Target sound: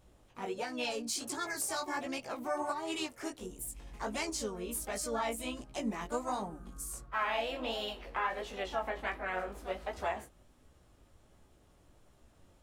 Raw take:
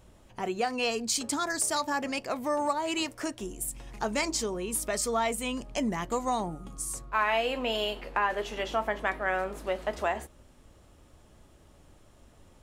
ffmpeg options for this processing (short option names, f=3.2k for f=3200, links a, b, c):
-filter_complex "[0:a]flanger=delay=15:depth=7:speed=1.4,asplit=2[a][b];[b]asetrate=55563,aresample=44100,atempo=0.793701,volume=-7dB[c];[a][c]amix=inputs=2:normalize=0,volume=-4.5dB"